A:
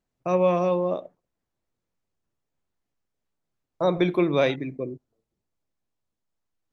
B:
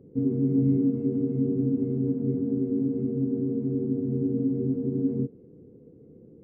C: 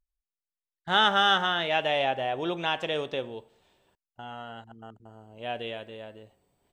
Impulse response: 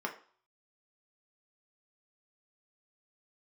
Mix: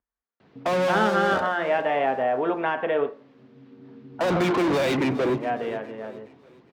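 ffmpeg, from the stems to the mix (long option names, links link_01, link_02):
-filter_complex "[0:a]lowpass=frequency=4400:width=0.5412,lowpass=frequency=4400:width=1.3066,acrossover=split=330|3000[link_01][link_02][link_03];[link_02]acompressor=threshold=-28dB:ratio=4[link_04];[link_01][link_04][link_03]amix=inputs=3:normalize=0,asplit=2[link_05][link_06];[link_06]highpass=frequency=720:poles=1,volume=38dB,asoftclip=type=tanh:threshold=-13.5dB[link_07];[link_05][link_07]amix=inputs=2:normalize=0,lowpass=frequency=2100:poles=1,volume=-6dB,adelay=400,volume=-2dB,asplit=2[link_08][link_09];[link_09]volume=-15dB[link_10];[1:a]acompressor=threshold=-33dB:ratio=6,adelay=400,volume=-8.5dB[link_11];[2:a]lowpass=frequency=2000:width=0.5412,lowpass=frequency=2000:width=1.3066,aeval=exprs='0.251*(cos(1*acos(clip(val(0)/0.251,-1,1)))-cos(1*PI/2))+0.00355*(cos(6*acos(clip(val(0)/0.251,-1,1)))-cos(6*PI/2))':channel_layout=same,volume=2dB,asplit=3[link_12][link_13][link_14];[link_12]atrim=end=3.09,asetpts=PTS-STARTPTS,afade=type=out:start_time=3.086:duration=0.004:curve=hsin[link_15];[link_13]atrim=start=3.09:end=3.84,asetpts=PTS-STARTPTS,volume=0[link_16];[link_14]atrim=start=3.84,asetpts=PTS-STARTPTS,afade=type=in:duration=0.004:curve=hsin[link_17];[link_15][link_16][link_17]concat=n=3:v=0:a=1,asplit=3[link_18][link_19][link_20];[link_19]volume=-3dB[link_21];[link_20]apad=whole_len=301393[link_22];[link_11][link_22]sidechaincompress=threshold=-38dB:ratio=8:attack=16:release=1020[link_23];[3:a]atrim=start_sample=2205[link_24];[link_21][link_24]afir=irnorm=-1:irlink=0[link_25];[link_10]aecho=0:1:414|828|1242|1656|2070|2484:1|0.41|0.168|0.0689|0.0283|0.0116[link_26];[link_08][link_23][link_18][link_25][link_26]amix=inputs=5:normalize=0,highpass=65,acrossover=split=490|3000[link_27][link_28][link_29];[link_28]acompressor=threshold=-23dB:ratio=6[link_30];[link_27][link_30][link_29]amix=inputs=3:normalize=0"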